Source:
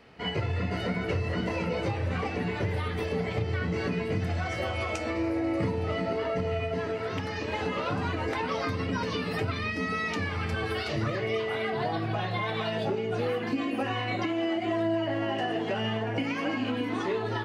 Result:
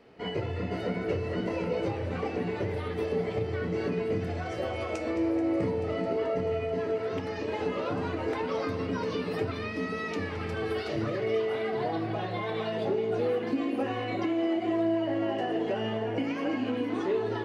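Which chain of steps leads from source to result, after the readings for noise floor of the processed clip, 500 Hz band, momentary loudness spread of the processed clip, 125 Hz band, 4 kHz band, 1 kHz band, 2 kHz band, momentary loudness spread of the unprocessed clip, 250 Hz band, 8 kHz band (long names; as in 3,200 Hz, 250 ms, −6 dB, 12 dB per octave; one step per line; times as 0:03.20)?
−35 dBFS, +2.0 dB, 5 LU, −4.5 dB, −5.5 dB, −2.5 dB, −5.0 dB, 2 LU, +0.5 dB, can't be measured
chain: parametric band 400 Hz +9 dB 1.8 octaves
hum removal 75.83 Hz, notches 40
on a send: feedback echo with a high-pass in the loop 217 ms, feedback 81%, level −15 dB
on the sum: level −6 dB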